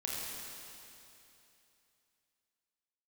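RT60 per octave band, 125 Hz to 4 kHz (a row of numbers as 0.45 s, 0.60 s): 2.9 s, 2.9 s, 2.9 s, 2.9 s, 2.9 s, 2.9 s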